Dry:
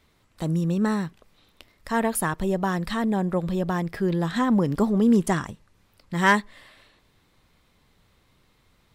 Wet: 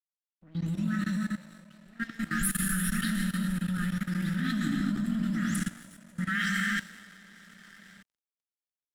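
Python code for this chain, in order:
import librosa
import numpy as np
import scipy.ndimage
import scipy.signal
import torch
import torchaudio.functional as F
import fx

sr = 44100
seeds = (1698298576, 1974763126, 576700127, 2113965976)

p1 = fx.spec_delay(x, sr, highs='late', ms=278)
p2 = fx.brickwall_bandstop(p1, sr, low_hz=320.0, high_hz=1200.0)
p3 = fx.peak_eq(p2, sr, hz=140.0, db=-7.5, octaves=0.55)
p4 = p3 + fx.echo_diffused(p3, sr, ms=569, feedback_pct=50, wet_db=-10, dry=0)
p5 = fx.rev_gated(p4, sr, seeds[0], gate_ms=440, shape='flat', drr_db=-1.0)
p6 = fx.level_steps(p5, sr, step_db=14)
p7 = np.sign(p6) * np.maximum(np.abs(p6) - 10.0 ** (-47.0 / 20.0), 0.0)
y = fx.band_widen(p7, sr, depth_pct=40)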